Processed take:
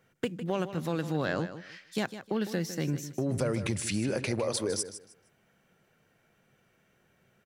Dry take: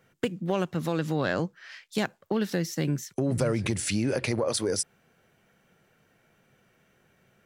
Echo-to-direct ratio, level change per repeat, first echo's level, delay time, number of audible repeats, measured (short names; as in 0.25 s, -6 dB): -12.0 dB, -13.0 dB, -12.0 dB, 0.155 s, 2